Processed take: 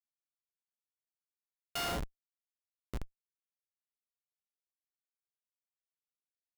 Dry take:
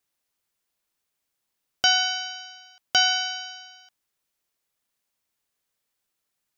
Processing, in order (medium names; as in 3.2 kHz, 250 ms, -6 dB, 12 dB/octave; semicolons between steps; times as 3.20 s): Doppler pass-by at 1.46 s, 23 m/s, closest 1.5 m; Schmitt trigger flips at -36.5 dBFS; trim +13.5 dB